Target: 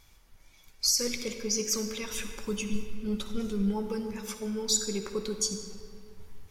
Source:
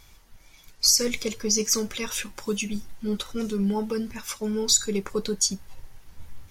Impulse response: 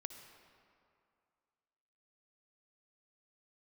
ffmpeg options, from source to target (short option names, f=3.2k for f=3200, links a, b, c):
-filter_complex "[0:a]asettb=1/sr,asplit=3[a][b][c];[a]atrim=end=2.094[d];[b]atrim=start=2.09:end=3.87,asetpts=PTS-STARTPTS,afade=t=in:d=0.004:c=qsin,afade=t=out:st=1.776:d=0.004:c=qsin,lowshelf=f=110:g=11[e];[c]atrim=start=3.866[f];[d][e]acrossfade=d=0.004:c1=hsin:c2=qsin[g];[g][f]acrossfade=d=0.004:c1=qsin:c2=hsin[h];[1:a]atrim=start_sample=2205[i];[h][i]afir=irnorm=-1:irlink=0,volume=-2dB"